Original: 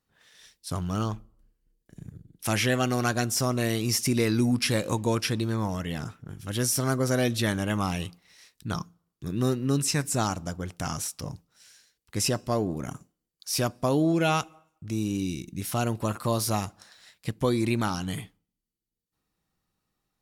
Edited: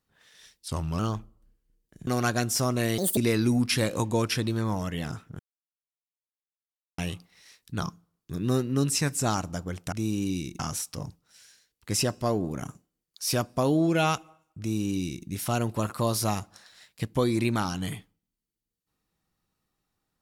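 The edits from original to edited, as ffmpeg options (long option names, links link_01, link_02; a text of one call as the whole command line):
ffmpeg -i in.wav -filter_complex "[0:a]asplit=10[link_01][link_02][link_03][link_04][link_05][link_06][link_07][link_08][link_09][link_10];[link_01]atrim=end=0.684[link_11];[link_02]atrim=start=0.68:end=0.96,asetpts=PTS-STARTPTS,asetrate=39690,aresample=44100[link_12];[link_03]atrim=start=0.956:end=2.042[link_13];[link_04]atrim=start=2.878:end=3.794[link_14];[link_05]atrim=start=3.79:end=4.1,asetpts=PTS-STARTPTS,asetrate=71442,aresample=44100[link_15];[link_06]atrim=start=4.096:end=6.32,asetpts=PTS-STARTPTS,afade=type=out:start_time=2.22:duration=0.004:curve=hsin[link_16];[link_07]atrim=start=6.32:end=7.91,asetpts=PTS-STARTPTS,volume=0[link_17];[link_08]atrim=start=7.91:end=10.852,asetpts=PTS-STARTPTS,afade=type=in:duration=0.004:curve=hsin[link_18];[link_09]atrim=start=14.848:end=15.522[link_19];[link_10]atrim=start=10.848[link_20];[link_11][link_12]acrossfade=duration=0.004:curve1=hsin:curve2=hsin[link_21];[link_21][link_13]acrossfade=duration=0.004:curve1=hsin:curve2=hsin[link_22];[link_22][link_14]acrossfade=duration=0.004:curve1=hsin:curve2=hsin[link_23];[link_23][link_15]acrossfade=duration=0.004:curve1=hsin:curve2=hsin[link_24];[link_16][link_17][link_18]concat=n=3:v=0:a=1[link_25];[link_24][link_25]acrossfade=duration=0.004:curve1=hsin:curve2=hsin[link_26];[link_26][link_19]acrossfade=duration=0.004:curve1=hsin:curve2=hsin[link_27];[link_27][link_20]acrossfade=duration=0.004:curve1=hsin:curve2=hsin" out.wav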